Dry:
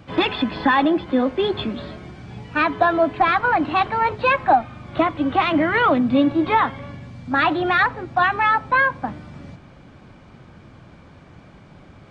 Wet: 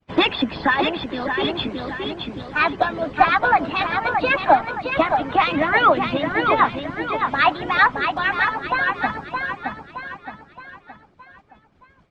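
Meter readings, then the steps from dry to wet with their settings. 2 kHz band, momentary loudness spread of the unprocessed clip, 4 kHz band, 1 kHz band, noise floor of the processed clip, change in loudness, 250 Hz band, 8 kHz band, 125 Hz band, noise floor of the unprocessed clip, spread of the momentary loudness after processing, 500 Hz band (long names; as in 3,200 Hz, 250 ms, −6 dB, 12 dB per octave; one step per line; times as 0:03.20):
+1.5 dB, 14 LU, +3.5 dB, +0.5 dB, −56 dBFS, −1.0 dB, −4.5 dB, can't be measured, −2.0 dB, −46 dBFS, 11 LU, −1.0 dB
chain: downward expander −34 dBFS
repeating echo 619 ms, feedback 44%, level −5 dB
harmonic and percussive parts rebalanced harmonic −17 dB
level +4.5 dB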